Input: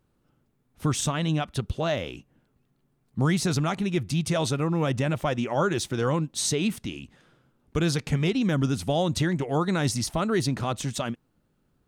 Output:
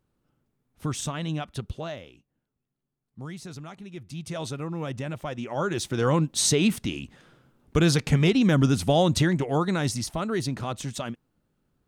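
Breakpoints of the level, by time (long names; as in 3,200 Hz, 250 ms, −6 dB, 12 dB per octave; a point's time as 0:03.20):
0:01.73 −4.5 dB
0:02.13 −15 dB
0:03.89 −15 dB
0:04.42 −7 dB
0:05.33 −7 dB
0:06.22 +4 dB
0:09.06 +4 dB
0:10.12 −3 dB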